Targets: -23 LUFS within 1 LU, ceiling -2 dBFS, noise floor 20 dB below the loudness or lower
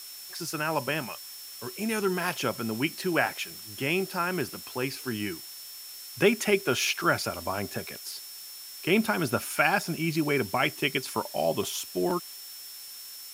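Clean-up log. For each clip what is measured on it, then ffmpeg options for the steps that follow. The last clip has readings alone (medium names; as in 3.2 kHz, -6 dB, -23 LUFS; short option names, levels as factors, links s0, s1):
steady tone 5.4 kHz; tone level -45 dBFS; noise floor -43 dBFS; noise floor target -49 dBFS; loudness -28.5 LUFS; peak level -8.5 dBFS; loudness target -23.0 LUFS
-> -af "bandreject=f=5400:w=30"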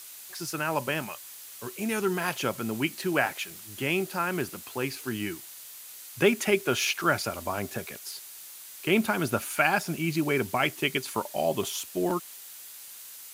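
steady tone not found; noise floor -45 dBFS; noise floor target -49 dBFS
-> -af "afftdn=nr=6:nf=-45"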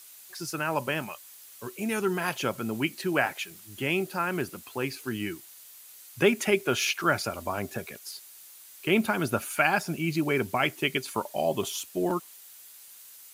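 noise floor -50 dBFS; loudness -28.5 LUFS; peak level -8.5 dBFS; loudness target -23.0 LUFS
-> -af "volume=1.88"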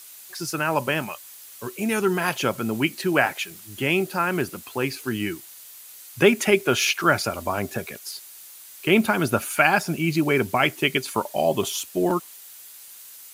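loudness -23.0 LUFS; peak level -3.0 dBFS; noise floor -44 dBFS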